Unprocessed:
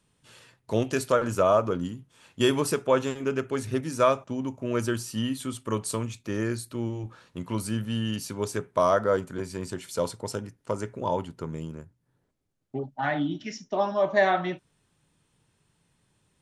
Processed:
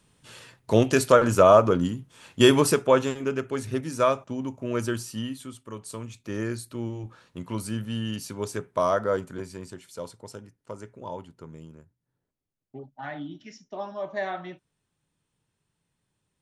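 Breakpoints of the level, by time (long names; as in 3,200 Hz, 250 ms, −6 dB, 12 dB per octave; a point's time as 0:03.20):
0:02.59 +6 dB
0:03.37 −0.5 dB
0:05.02 −0.5 dB
0:05.73 −10.5 dB
0:06.36 −1.5 dB
0:09.32 −1.5 dB
0:09.88 −9 dB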